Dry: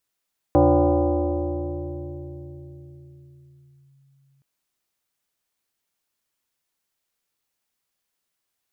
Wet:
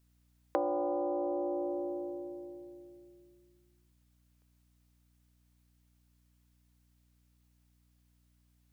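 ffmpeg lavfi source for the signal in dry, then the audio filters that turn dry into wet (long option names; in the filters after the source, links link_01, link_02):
-f lavfi -i "aevalsrc='0.266*pow(10,-3*t/4.83)*sin(2*PI*137*t+3*clip(1-t/3.42,0,1)*sin(2*PI*1.58*137*t))':duration=3.87:sample_rate=44100"
-af "highpass=frequency=350:width=0.5412,highpass=frequency=350:width=1.3066,acompressor=threshold=-30dB:ratio=6,aeval=exprs='val(0)+0.000398*(sin(2*PI*60*n/s)+sin(2*PI*2*60*n/s)/2+sin(2*PI*3*60*n/s)/3+sin(2*PI*4*60*n/s)/4+sin(2*PI*5*60*n/s)/5)':channel_layout=same"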